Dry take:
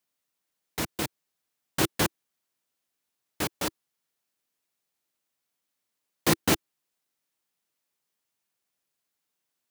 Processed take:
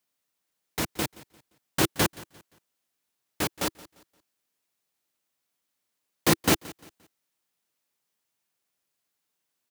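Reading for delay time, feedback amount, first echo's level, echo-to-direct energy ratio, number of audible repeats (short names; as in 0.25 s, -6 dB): 0.174 s, 33%, -20.5 dB, -20.0 dB, 2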